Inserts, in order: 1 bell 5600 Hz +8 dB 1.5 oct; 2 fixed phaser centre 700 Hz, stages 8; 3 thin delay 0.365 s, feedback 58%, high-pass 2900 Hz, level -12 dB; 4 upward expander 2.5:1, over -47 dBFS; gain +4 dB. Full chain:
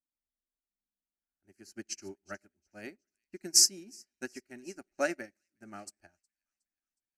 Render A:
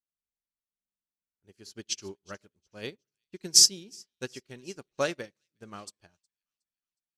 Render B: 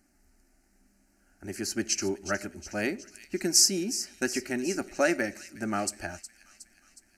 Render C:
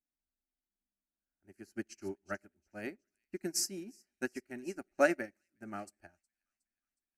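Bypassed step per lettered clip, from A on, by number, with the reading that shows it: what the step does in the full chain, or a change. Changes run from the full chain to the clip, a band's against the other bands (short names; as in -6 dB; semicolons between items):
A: 2, 125 Hz band +6.5 dB; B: 4, 4 kHz band -7.5 dB; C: 1, 4 kHz band -17.0 dB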